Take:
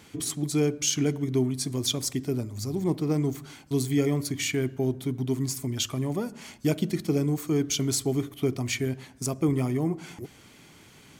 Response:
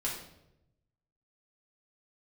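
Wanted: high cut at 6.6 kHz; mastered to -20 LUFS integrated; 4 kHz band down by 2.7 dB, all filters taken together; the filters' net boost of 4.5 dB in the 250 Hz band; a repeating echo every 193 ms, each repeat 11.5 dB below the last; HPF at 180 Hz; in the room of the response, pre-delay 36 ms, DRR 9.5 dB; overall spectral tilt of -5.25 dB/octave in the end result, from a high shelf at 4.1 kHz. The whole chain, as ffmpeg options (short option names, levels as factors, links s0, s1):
-filter_complex "[0:a]highpass=180,lowpass=6600,equalizer=f=250:t=o:g=6.5,equalizer=f=4000:t=o:g=-7,highshelf=f=4100:g=6.5,aecho=1:1:193|386|579:0.266|0.0718|0.0194,asplit=2[s0][s1];[1:a]atrim=start_sample=2205,adelay=36[s2];[s1][s2]afir=irnorm=-1:irlink=0,volume=0.211[s3];[s0][s3]amix=inputs=2:normalize=0,volume=1.78"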